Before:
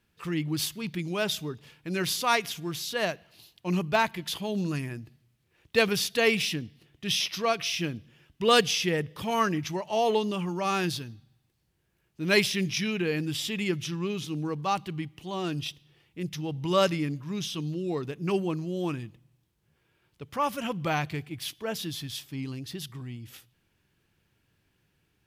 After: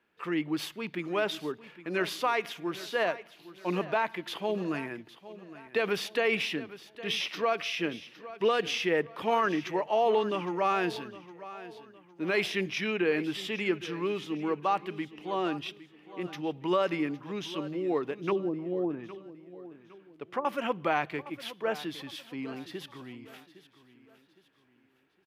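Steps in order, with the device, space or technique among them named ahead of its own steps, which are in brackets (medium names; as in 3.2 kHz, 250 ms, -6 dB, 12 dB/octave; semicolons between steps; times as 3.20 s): DJ mixer with the lows and highs turned down (three-band isolator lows -23 dB, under 260 Hz, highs -17 dB, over 2.7 kHz; peak limiter -21 dBFS, peak gain reduction 11.5 dB); 18.29–20.45 s: low-pass that closes with the level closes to 390 Hz, closed at -28 dBFS; feedback delay 811 ms, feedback 38%, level -16 dB; trim +4 dB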